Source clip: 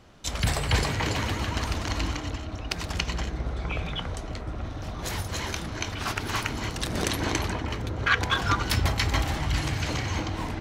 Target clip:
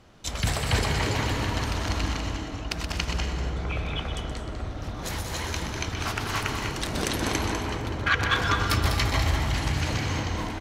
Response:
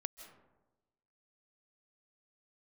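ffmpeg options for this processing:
-filter_complex "[0:a]aecho=1:1:125.4|198.3:0.355|0.447[a];[1:a]atrim=start_sample=2205,asetrate=29988,aresample=44100[b];[a][b]afir=irnorm=-1:irlink=0"

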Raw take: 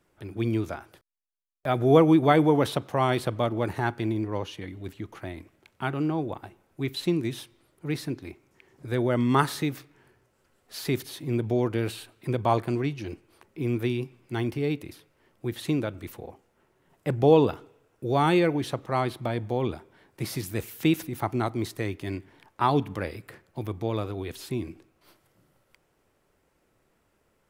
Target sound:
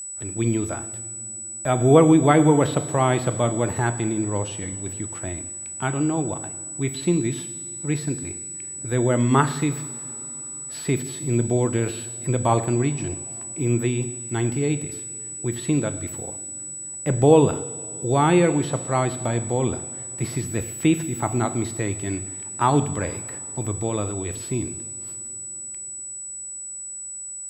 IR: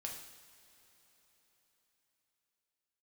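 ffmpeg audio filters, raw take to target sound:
-filter_complex "[0:a]asplit=2[a][b];[1:a]atrim=start_sample=2205,lowshelf=f=270:g=8[c];[b][c]afir=irnorm=-1:irlink=0,volume=-3dB[d];[a][d]amix=inputs=2:normalize=0,acrossover=split=3500[e][f];[f]acompressor=threshold=-45dB:ratio=4:attack=1:release=60[g];[e][g]amix=inputs=2:normalize=0,aeval=exprs='val(0)+0.0251*sin(2*PI*7900*n/s)':c=same"

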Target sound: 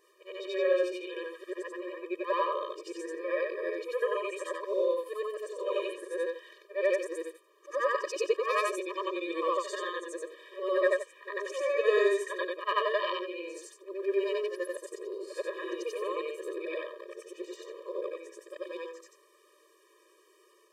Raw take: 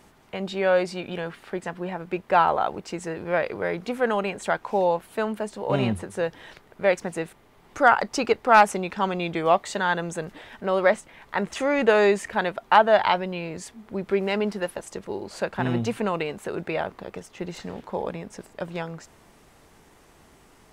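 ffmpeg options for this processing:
-af "afftfilt=real='re':imag='-im':win_size=8192:overlap=0.75,afftfilt=real='re*eq(mod(floor(b*sr/1024/320),2),1)':imag='im*eq(mod(floor(b*sr/1024/320),2),1)':win_size=1024:overlap=0.75"

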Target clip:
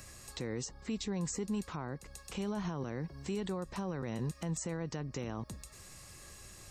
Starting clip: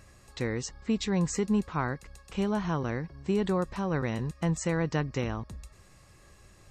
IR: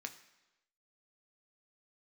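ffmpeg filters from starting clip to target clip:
-filter_complex "[0:a]acrossover=split=110|1000[a][b][c];[a]acompressor=threshold=-53dB:ratio=4[d];[b]acompressor=threshold=-33dB:ratio=4[e];[c]acompressor=threshold=-52dB:ratio=4[f];[d][e][f]amix=inputs=3:normalize=0,highshelf=f=3.7k:g=12,alimiter=level_in=5dB:limit=-24dB:level=0:latency=1:release=45,volume=-5dB,volume=1dB"

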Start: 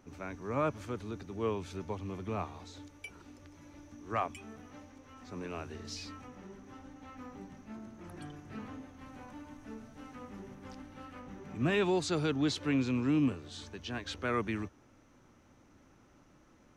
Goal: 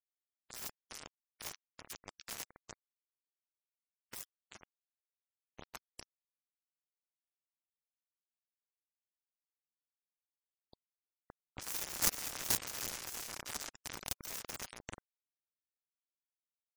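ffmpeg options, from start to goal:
-filter_complex "[0:a]asplit=2[a][b];[b]adelay=384,lowpass=f=870:p=1,volume=-4dB,asplit=2[c][d];[d]adelay=384,lowpass=f=870:p=1,volume=0.42,asplit=2[e][f];[f]adelay=384,lowpass=f=870:p=1,volume=0.42,asplit=2[g][h];[h]adelay=384,lowpass=f=870:p=1,volume=0.42,asplit=2[i][j];[j]adelay=384,lowpass=f=870:p=1,volume=0.42[k];[a][c][e][g][i][k]amix=inputs=6:normalize=0,asubboost=boost=12:cutoff=75,aeval=exprs='0.133*(cos(1*acos(clip(val(0)/0.133,-1,1)))-cos(1*PI/2))+0.00237*(cos(5*acos(clip(val(0)/0.133,-1,1)))-cos(5*PI/2))':c=same,acrossover=split=4500[l][m];[l]aeval=exprs='(mod(23.7*val(0)+1,2)-1)/23.7':c=same[n];[n][m]amix=inputs=2:normalize=0,acrusher=bits=3:mix=0:aa=0.5,asplit=2[o][p];[p]alimiter=level_in=14dB:limit=-24dB:level=0:latency=1:release=154,volume=-14dB,volume=1.5dB[q];[o][q]amix=inputs=2:normalize=0,highshelf=f=5.7k:g=-7.5,afftfilt=real='re*gte(hypot(re,im),0.000398)':imag='im*gte(hypot(re,im),0.000398)':win_size=1024:overlap=0.75,aexciter=amount=2.4:drive=6.3:freq=5.3k,volume=14dB"

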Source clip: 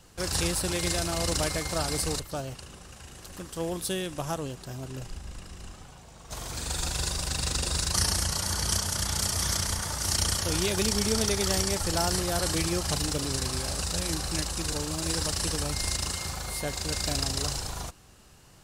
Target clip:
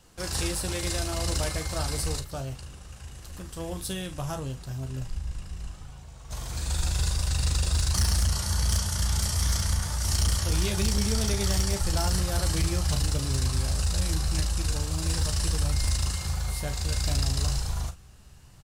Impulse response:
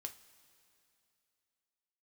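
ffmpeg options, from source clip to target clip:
-af "asubboost=boost=3:cutoff=160,aecho=1:1:15|38|50:0.355|0.237|0.178,asoftclip=type=hard:threshold=-15.5dB,volume=-3dB"

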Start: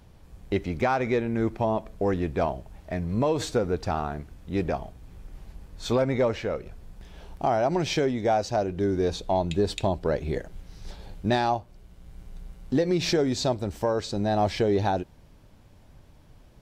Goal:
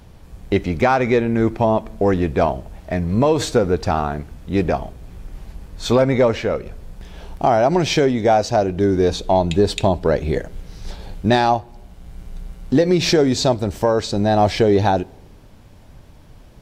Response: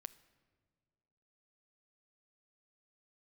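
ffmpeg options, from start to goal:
-filter_complex "[0:a]asplit=2[a][b];[1:a]atrim=start_sample=2205,asetrate=70560,aresample=44100[c];[b][c]afir=irnorm=-1:irlink=0,volume=3.5dB[d];[a][d]amix=inputs=2:normalize=0,volume=5dB"

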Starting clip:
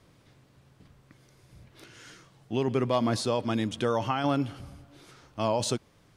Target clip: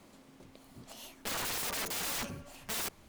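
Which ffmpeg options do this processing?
-af "asubboost=boost=3.5:cutoff=56,asetrate=88200,aresample=44100,aeval=exprs='(mod(42.2*val(0)+1,2)-1)/42.2':c=same,volume=1.5dB"

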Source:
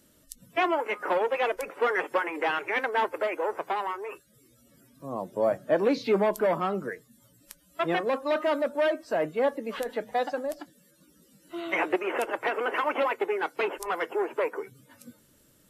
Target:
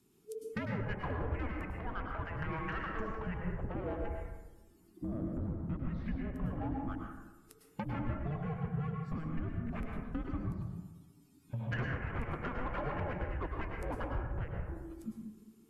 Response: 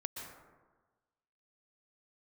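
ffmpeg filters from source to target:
-filter_complex "[0:a]afwtdn=0.0126,lowshelf=f=190:g=12,acompressor=threshold=-39dB:ratio=16,asoftclip=type=tanh:threshold=-31.5dB,afreqshift=-460,asettb=1/sr,asplit=3[a][b][c];[a]atrim=end=1.794[d];[b]atrim=start=1.79:end=3.84,asetpts=PTS-STARTPTS,afade=t=in:d=0.004:c=qsin,afade=t=out:st=2.046:d=0.004:c=qsin,acrossover=split=480|5500[e][f][g];[e]adelay=50[h];[g]adelay=300[i];[h][f][i]amix=inputs=3:normalize=0,atrim=end_sample=90405[j];[c]atrim=start=3.836[k];[d][j]acrossfade=d=0.004:c1=hsin:c2=qsin[l];[l][k]acrossfade=d=0.004:c1=qsin:c2=hsin[m];[1:a]atrim=start_sample=2205,asetrate=52920,aresample=44100[n];[m][n]afir=irnorm=-1:irlink=0,volume=9dB"

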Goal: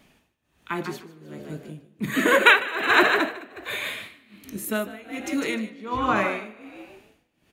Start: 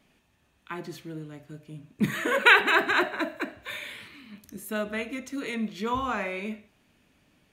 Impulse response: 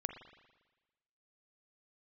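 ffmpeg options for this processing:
-filter_complex "[0:a]asettb=1/sr,asplit=3[a][b][c];[a]atrim=end=5.684[d];[b]atrim=start=5.68:end=6.16,asetpts=PTS-STARTPTS,afade=t=in:d=0.004:c=qsin,afade=t=out:st=0.476:d=0.004:c=qsin,aemphasis=mode=reproduction:type=50kf[e];[c]atrim=start=6.156[f];[d][e]acrossfade=d=0.004:c1=hsin:c2=qsin[g];[g][f]acrossfade=d=0.004:c1=qsin:c2=hsin,asplit=6[h][i][j][k][l][m];[i]adelay=152,afreqshift=56,volume=-6dB[n];[j]adelay=304,afreqshift=112,volume=-14.4dB[o];[k]adelay=456,afreqshift=168,volume=-22.8dB[p];[l]adelay=608,afreqshift=224,volume=-31.2dB[q];[m]adelay=760,afreqshift=280,volume=-39.6dB[r];[h][n][o][p][q][r]amix=inputs=6:normalize=0,tremolo=f=1.3:d=0.91,asplit=2[s][t];[1:a]atrim=start_sample=2205,highshelf=f=9.7k:g=10[u];[t][u]afir=irnorm=-1:irlink=0,volume=-9dB[v];[s][v]amix=inputs=2:normalize=0,volume=5dB"

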